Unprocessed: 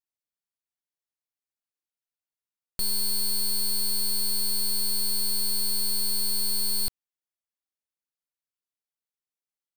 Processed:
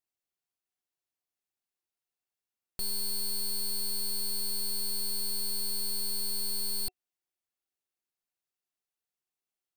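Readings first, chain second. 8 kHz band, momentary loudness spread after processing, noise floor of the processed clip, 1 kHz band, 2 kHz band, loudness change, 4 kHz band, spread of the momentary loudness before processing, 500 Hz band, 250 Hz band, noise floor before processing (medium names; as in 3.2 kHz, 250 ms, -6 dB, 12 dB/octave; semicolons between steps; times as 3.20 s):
-6.0 dB, 2 LU, under -85 dBFS, -5.5 dB, -6.0 dB, -6.0 dB, -6.0 dB, 2 LU, -2.5 dB, -6.0 dB, under -85 dBFS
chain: peak limiter -30.5 dBFS, peak gain reduction 6 dB; small resonant body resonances 370/730/2700 Hz, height 8 dB, ringing for 65 ms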